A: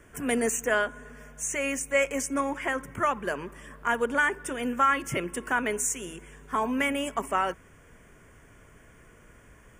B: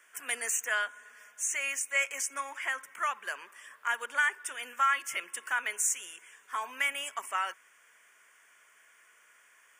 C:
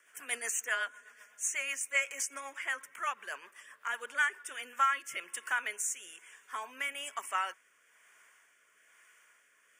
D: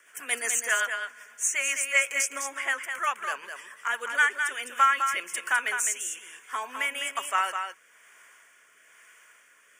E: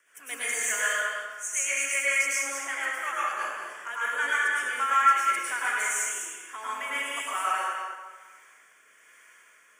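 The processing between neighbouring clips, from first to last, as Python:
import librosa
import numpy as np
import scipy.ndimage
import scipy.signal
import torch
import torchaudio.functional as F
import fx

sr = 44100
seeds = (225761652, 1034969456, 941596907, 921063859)

y1 = scipy.signal.sosfilt(scipy.signal.butter(2, 1400.0, 'highpass', fs=sr, output='sos'), x)
y2 = fx.rotary_switch(y1, sr, hz=8.0, then_hz=1.1, switch_at_s=4.1)
y3 = y2 + 10.0 ** (-6.5 / 20.0) * np.pad(y2, (int(206 * sr / 1000.0), 0))[:len(y2)]
y3 = y3 * 10.0 ** (7.0 / 20.0)
y4 = fx.rev_plate(y3, sr, seeds[0], rt60_s=1.3, hf_ratio=0.65, predelay_ms=90, drr_db=-8.0)
y4 = y4 * 10.0 ** (-8.5 / 20.0)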